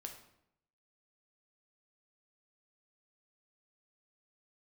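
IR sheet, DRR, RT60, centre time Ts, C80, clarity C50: 3.0 dB, 0.75 s, 19 ms, 11.0 dB, 8.0 dB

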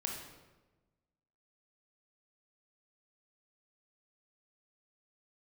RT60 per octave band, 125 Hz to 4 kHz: 1.5, 1.4, 1.3, 1.1, 0.95, 0.80 seconds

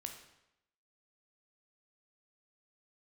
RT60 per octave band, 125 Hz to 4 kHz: 0.85, 0.80, 0.85, 0.85, 0.80, 0.75 seconds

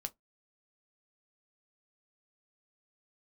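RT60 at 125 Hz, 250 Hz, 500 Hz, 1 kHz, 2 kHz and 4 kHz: 0.20, 0.20, 0.15, 0.15, 0.10, 0.10 seconds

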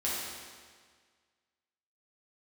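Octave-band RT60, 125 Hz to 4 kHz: 1.7, 1.7, 1.7, 1.7, 1.7, 1.6 seconds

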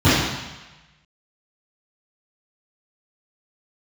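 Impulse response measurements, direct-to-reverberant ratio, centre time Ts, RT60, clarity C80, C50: −17.5 dB, 92 ms, 1.1 s, 1.5 dB, −2.5 dB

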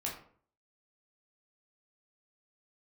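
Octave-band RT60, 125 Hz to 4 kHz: 0.60, 0.60, 0.55, 0.50, 0.40, 0.30 seconds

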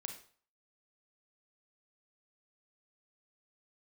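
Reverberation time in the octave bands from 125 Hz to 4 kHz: 0.45, 0.40, 0.45, 0.50, 0.45, 0.40 seconds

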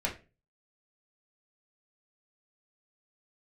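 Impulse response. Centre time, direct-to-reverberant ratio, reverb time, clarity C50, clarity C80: 17 ms, −4.0 dB, 0.30 s, 11.0 dB, 18.0 dB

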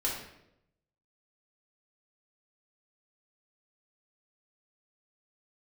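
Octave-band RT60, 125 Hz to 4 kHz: 1.1, 0.95, 0.90, 0.70, 0.70, 0.60 seconds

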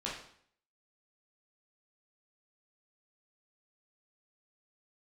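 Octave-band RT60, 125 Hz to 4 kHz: 0.65, 0.65, 0.60, 0.60, 0.60, 0.55 seconds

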